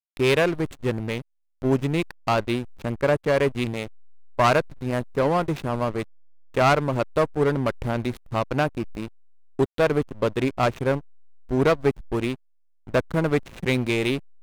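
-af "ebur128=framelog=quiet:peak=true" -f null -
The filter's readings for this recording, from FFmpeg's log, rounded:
Integrated loudness:
  I:         -24.4 LUFS
  Threshold: -34.7 LUFS
Loudness range:
  LRA:         1.7 LU
  Threshold: -44.9 LUFS
  LRA low:   -25.7 LUFS
  LRA high:  -24.0 LUFS
True peak:
  Peak:       -8.2 dBFS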